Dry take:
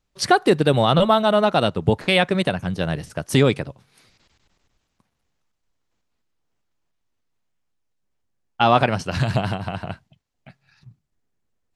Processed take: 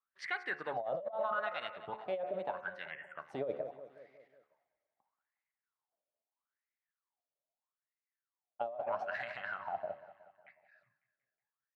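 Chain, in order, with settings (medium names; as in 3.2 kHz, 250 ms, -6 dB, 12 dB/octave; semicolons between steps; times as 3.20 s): wah-wah 0.78 Hz 580–2100 Hz, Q 11; on a send: feedback delay 183 ms, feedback 55%, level -16.5 dB; on the sum: spectral selection erased 2.91–3.19 s, 3.4–6.8 kHz; treble shelf 7.9 kHz -7.5 dB; de-hum 72.23 Hz, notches 38; compressor with a negative ratio -34 dBFS, ratio -1; trim -2.5 dB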